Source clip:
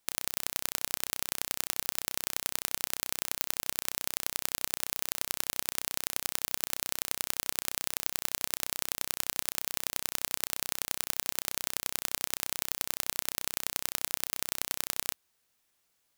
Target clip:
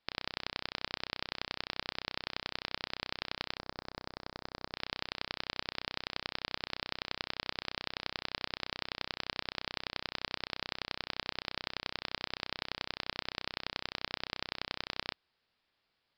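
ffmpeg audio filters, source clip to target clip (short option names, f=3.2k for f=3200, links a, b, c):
-filter_complex "[0:a]aresample=11025,aresample=44100,asplit=3[a][b][c];[a]afade=t=out:st=3.57:d=0.02[d];[b]equalizer=f=2.9k:w=1:g=-15,afade=t=in:st=3.57:d=0.02,afade=t=out:st=4.73:d=0.02[e];[c]afade=t=in:st=4.73:d=0.02[f];[d][e][f]amix=inputs=3:normalize=0"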